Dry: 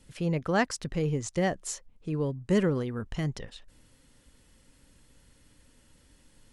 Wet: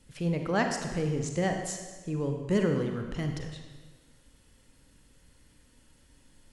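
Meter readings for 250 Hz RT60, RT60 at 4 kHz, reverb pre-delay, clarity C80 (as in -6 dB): 1.4 s, 1.2 s, 32 ms, 6.5 dB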